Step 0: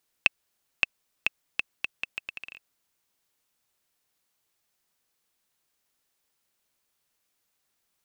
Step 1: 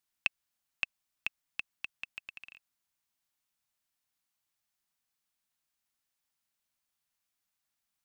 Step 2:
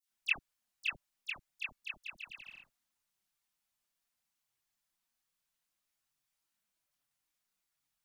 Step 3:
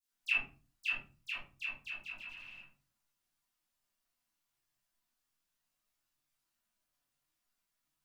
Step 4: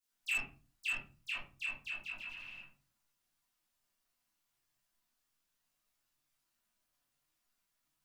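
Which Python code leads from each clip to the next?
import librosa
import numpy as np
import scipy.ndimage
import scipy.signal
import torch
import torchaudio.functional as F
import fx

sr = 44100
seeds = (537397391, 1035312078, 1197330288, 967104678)

y1 = fx.peak_eq(x, sr, hz=440.0, db=-12.5, octaves=0.57)
y1 = F.gain(torch.from_numpy(y1), -8.0).numpy()
y2 = fx.chorus_voices(y1, sr, voices=6, hz=0.3, base_ms=25, depth_ms=4.9, mix_pct=60)
y2 = fx.dispersion(y2, sr, late='lows', ms=98.0, hz=1700.0)
y2 = F.gain(torch.from_numpy(y2), 2.5).numpy()
y3 = fx.room_shoebox(y2, sr, seeds[0], volume_m3=200.0, walls='furnished', distance_m=3.1)
y3 = F.gain(torch.from_numpy(y3), -5.5).numpy()
y4 = 10.0 ** (-31.5 / 20.0) * np.tanh(y3 / 10.0 ** (-31.5 / 20.0))
y4 = F.gain(torch.from_numpy(y4), 2.0).numpy()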